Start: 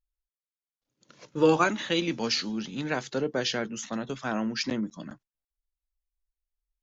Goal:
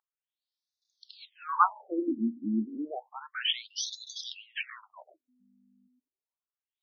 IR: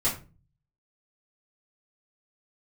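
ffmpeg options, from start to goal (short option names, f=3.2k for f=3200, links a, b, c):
-filter_complex "[0:a]equalizer=f=125:t=o:w=1:g=-9,equalizer=f=250:t=o:w=1:g=10,equalizer=f=500:t=o:w=1:g=-12,equalizer=f=1k:t=o:w=1:g=9,equalizer=f=2k:t=o:w=1:g=-6,equalizer=f=4k:t=o:w=1:g=10,acrossover=split=570|3600[a][b][c];[c]acontrast=75[d];[a][b][d]amix=inputs=3:normalize=0,aeval=exprs='val(0)+0.00282*(sin(2*PI*50*n/s)+sin(2*PI*2*50*n/s)/2+sin(2*PI*3*50*n/s)/3+sin(2*PI*4*50*n/s)/4+sin(2*PI*5*50*n/s)/5)':c=same,afftfilt=real='re*between(b*sr/1024,260*pow(4900/260,0.5+0.5*sin(2*PI*0.31*pts/sr))/1.41,260*pow(4900/260,0.5+0.5*sin(2*PI*0.31*pts/sr))*1.41)':imag='im*between(b*sr/1024,260*pow(4900/260,0.5+0.5*sin(2*PI*0.31*pts/sr))/1.41,260*pow(4900/260,0.5+0.5*sin(2*PI*0.31*pts/sr))*1.41)':win_size=1024:overlap=0.75"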